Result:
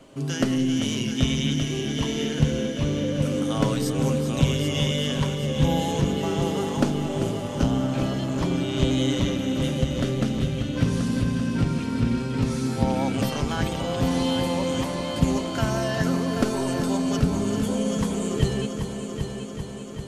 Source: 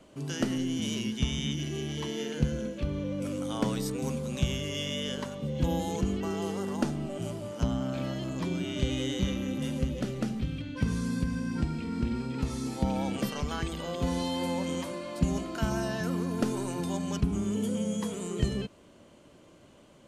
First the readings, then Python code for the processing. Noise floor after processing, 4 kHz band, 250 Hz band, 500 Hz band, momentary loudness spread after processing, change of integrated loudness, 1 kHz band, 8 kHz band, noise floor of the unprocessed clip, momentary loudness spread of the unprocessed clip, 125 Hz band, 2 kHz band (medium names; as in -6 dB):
-32 dBFS, +7.5 dB, +7.0 dB, +7.5 dB, 4 LU, +7.0 dB, +7.5 dB, +6.5 dB, -56 dBFS, 4 LU, +8.0 dB, +7.0 dB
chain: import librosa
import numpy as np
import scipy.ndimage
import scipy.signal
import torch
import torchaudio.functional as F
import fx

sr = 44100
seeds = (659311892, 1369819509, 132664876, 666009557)

y = x + 0.33 * np.pad(x, (int(7.4 * sr / 1000.0), 0))[:len(x)]
y = fx.echo_heads(y, sr, ms=391, heads='first and second', feedback_pct=66, wet_db=-10.5)
y = fx.doppler_dist(y, sr, depth_ms=0.19)
y = y * librosa.db_to_amplitude(5.5)